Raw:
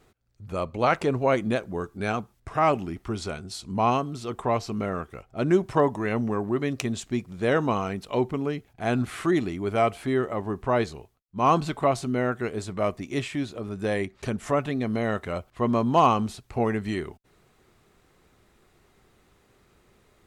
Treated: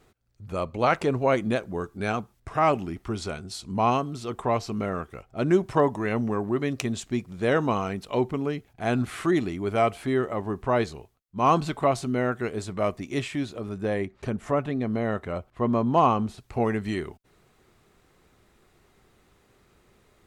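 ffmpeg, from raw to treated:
-filter_complex "[0:a]asettb=1/sr,asplit=3[s0][s1][s2];[s0]atrim=end=13.784[s3];[s1]atrim=start=13.78:end=16.38,asetpts=PTS-STARTPTS,afade=t=in:d=0.004:c=qsin,afade=t=out:st=2.596:d=0.004:c=qsin,highshelf=f=2400:g=-9[s4];[s2]atrim=start=16.376[s5];[s3][s4]acrossfade=d=0.004:c1=hsin:c2=qsin[s6];[s6][s5]acrossfade=d=0.004:c1=qsin:c2=hsin"

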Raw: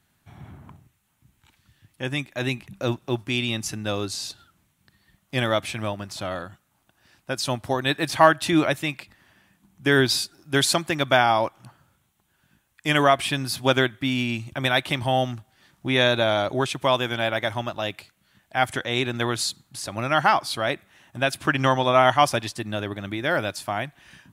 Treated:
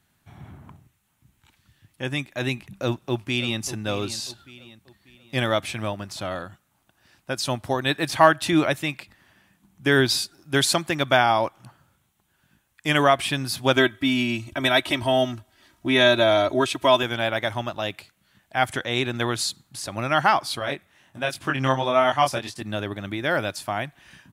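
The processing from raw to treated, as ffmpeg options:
-filter_complex "[0:a]asplit=2[s0][s1];[s1]afade=t=in:st=2.57:d=0.01,afade=t=out:st=3.61:d=0.01,aecho=0:1:590|1180|1770|2360:0.223872|0.0895488|0.0358195|0.0143278[s2];[s0][s2]amix=inputs=2:normalize=0,asettb=1/sr,asplit=3[s3][s4][s5];[s3]atrim=end=13.764[s6];[s4]atrim=start=13.76:end=17.03,asetpts=PTS-STARTPTS,afade=t=in:d=0.004:c=qsin,afade=t=out:st=3.266:d=0.004:c=qsin,aecho=1:1:3.1:0.78,atrim=end_sample=144207[s7];[s5]atrim=start=17.026[s8];[s6][s7]acrossfade=d=0.004:c1=hsin:c2=qsin[s9];[s9][s8]acrossfade=d=0.004:c1=qsin:c2=hsin,asettb=1/sr,asplit=3[s10][s11][s12];[s10]atrim=end=20.594[s13];[s11]atrim=start=20.59:end=22.62,asetpts=PTS-STARTPTS,afade=t=in:d=0.004:c=qsin,afade=t=out:st=2.026:d=0.004:c=qsin,flanger=delay=20:depth=2.9:speed=1.4[s14];[s12]atrim=start=22.616[s15];[s13][s14]acrossfade=d=0.004:c1=hsin:c2=qsin[s16];[s16][s15]acrossfade=d=0.004:c1=qsin:c2=hsin"

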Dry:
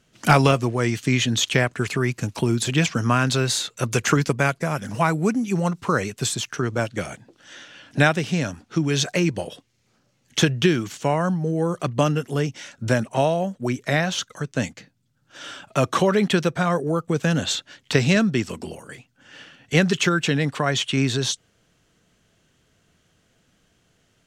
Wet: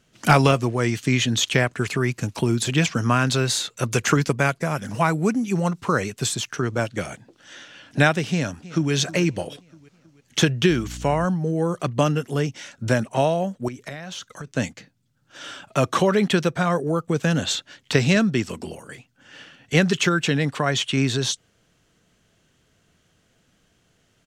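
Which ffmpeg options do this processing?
-filter_complex "[0:a]asplit=2[s0][s1];[s1]afade=t=in:st=8.3:d=0.01,afade=t=out:st=8.92:d=0.01,aecho=0:1:320|640|960|1280|1600:0.133352|0.0733437|0.040339|0.0221865|0.0122026[s2];[s0][s2]amix=inputs=2:normalize=0,asettb=1/sr,asplit=3[s3][s4][s5];[s3]atrim=end=10.704[s6];[s4]atrim=start=10.7:end=11.25,asetpts=PTS-STARTPTS,afade=t=in:d=0.004:c=qsin,afade=t=out:st=0.546:d=0.004:c=qsin,aeval=exprs='val(0)+0.02*(sin(2*PI*60*n/s)+sin(2*PI*2*60*n/s)/2+sin(2*PI*3*60*n/s)/3+sin(2*PI*4*60*n/s)/4+sin(2*PI*5*60*n/s)/5)':c=same[s7];[s5]atrim=start=11.246[s8];[s6][s7]acrossfade=d=0.004:c1=hsin:c2=qsin[s9];[s9][s8]acrossfade=d=0.004:c1=qsin:c2=hsin,asettb=1/sr,asplit=3[s10][s11][s12];[s10]atrim=end=13.684[s13];[s11]atrim=start=13.68:end=14.47,asetpts=PTS-STARTPTS,afade=t=in:d=0.004:c=qsin,afade=t=out:st=0.786:d=0.004:c=qsin,acompressor=threshold=0.0316:ratio=10:attack=3.2:release=140:knee=1:detection=peak[s14];[s12]atrim=start=14.466[s15];[s13][s14]acrossfade=d=0.004:c1=hsin:c2=qsin[s16];[s16][s15]acrossfade=d=0.004:c1=qsin:c2=hsin"

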